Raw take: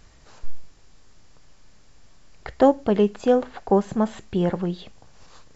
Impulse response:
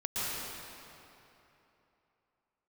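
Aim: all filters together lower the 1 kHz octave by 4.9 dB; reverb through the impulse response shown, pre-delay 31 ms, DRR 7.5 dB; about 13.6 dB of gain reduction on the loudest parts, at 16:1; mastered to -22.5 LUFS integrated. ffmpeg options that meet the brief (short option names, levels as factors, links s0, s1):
-filter_complex "[0:a]equalizer=f=1000:t=o:g=-7,acompressor=threshold=0.0447:ratio=16,asplit=2[s0][s1];[1:a]atrim=start_sample=2205,adelay=31[s2];[s1][s2]afir=irnorm=-1:irlink=0,volume=0.178[s3];[s0][s3]amix=inputs=2:normalize=0,volume=3.76"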